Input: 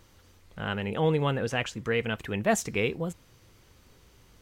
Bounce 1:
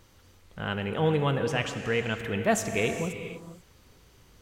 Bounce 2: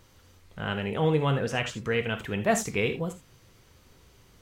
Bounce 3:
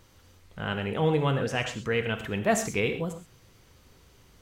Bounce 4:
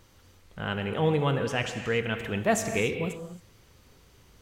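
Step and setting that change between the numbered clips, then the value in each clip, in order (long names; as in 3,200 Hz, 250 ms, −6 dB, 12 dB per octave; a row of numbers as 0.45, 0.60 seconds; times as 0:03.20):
reverb whose tail is shaped and stops, gate: 510, 100, 150, 300 milliseconds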